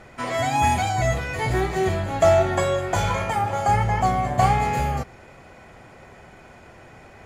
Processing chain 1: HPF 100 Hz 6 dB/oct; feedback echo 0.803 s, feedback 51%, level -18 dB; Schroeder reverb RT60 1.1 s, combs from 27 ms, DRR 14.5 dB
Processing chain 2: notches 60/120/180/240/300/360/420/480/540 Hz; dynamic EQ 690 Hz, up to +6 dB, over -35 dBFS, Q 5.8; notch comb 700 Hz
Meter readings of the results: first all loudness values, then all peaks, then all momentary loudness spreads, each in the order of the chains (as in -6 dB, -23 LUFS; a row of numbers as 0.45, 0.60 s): -22.0, -23.0 LUFS; -5.5, -6.5 dBFS; 20, 7 LU